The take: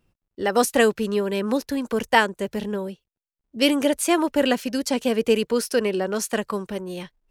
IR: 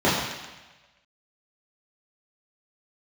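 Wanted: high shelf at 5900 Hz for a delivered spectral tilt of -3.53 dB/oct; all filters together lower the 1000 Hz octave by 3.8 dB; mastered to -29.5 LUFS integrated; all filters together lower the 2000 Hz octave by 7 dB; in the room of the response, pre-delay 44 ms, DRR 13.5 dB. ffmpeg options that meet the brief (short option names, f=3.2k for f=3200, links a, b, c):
-filter_complex "[0:a]equalizer=f=1k:t=o:g=-3.5,equalizer=f=2k:t=o:g=-8.5,highshelf=f=5.9k:g=6.5,asplit=2[a][b];[1:a]atrim=start_sample=2205,adelay=44[c];[b][c]afir=irnorm=-1:irlink=0,volume=-33.5dB[d];[a][d]amix=inputs=2:normalize=0,volume=-6dB"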